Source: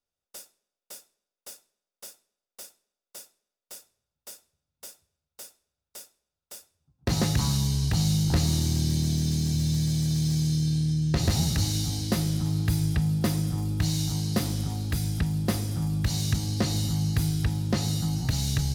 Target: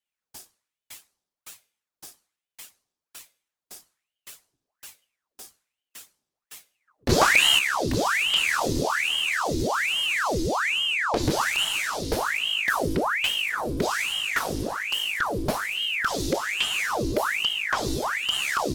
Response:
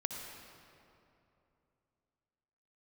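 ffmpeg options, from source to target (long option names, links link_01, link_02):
-filter_complex "[0:a]asettb=1/sr,asplit=3[link_01][link_02][link_03];[link_01]atrim=end=7.094[link_04];[link_02]atrim=start=7.09:end=7.59,asetpts=PTS-STARTPTS,afade=type=in:duration=0.004:curve=qsin,afade=type=out:start_time=0.496:duration=0.004:curve=qsin,acontrast=64[link_05];[link_03]atrim=start=7.586[link_06];[link_04][link_05]acrossfade=duration=0.004:curve1=hsin:curve2=qsin[link_07];[link_07][link_06]acrossfade=duration=0.004:curve1=qsin:curve2=hsin,aeval=exprs='val(0)*sin(2*PI*1600*n/s+1600*0.9/1.2*sin(2*PI*1.2*n/s))':channel_layout=same,volume=2.5dB"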